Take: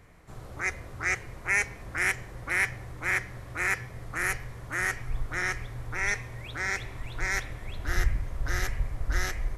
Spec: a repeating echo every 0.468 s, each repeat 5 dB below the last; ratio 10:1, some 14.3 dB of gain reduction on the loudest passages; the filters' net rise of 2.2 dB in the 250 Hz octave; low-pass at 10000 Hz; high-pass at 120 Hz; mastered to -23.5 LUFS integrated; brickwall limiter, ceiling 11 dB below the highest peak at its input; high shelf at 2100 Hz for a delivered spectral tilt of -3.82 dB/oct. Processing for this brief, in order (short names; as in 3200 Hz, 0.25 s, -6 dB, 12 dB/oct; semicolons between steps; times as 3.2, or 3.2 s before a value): HPF 120 Hz; LPF 10000 Hz; bell 250 Hz +4 dB; high shelf 2100 Hz +5.5 dB; compressor 10:1, threshold -33 dBFS; limiter -31 dBFS; feedback echo 0.468 s, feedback 56%, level -5 dB; gain +17.5 dB